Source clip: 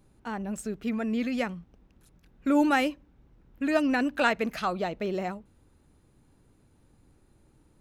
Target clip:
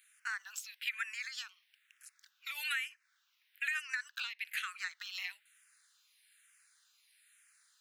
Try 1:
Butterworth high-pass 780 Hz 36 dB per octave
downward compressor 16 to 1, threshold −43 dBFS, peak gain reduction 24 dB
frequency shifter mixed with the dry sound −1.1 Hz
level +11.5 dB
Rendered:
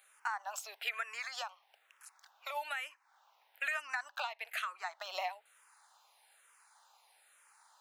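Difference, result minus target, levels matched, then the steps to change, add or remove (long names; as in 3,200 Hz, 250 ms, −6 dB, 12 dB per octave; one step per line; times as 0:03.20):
1,000 Hz band +10.5 dB
change: Butterworth high-pass 1,600 Hz 36 dB per octave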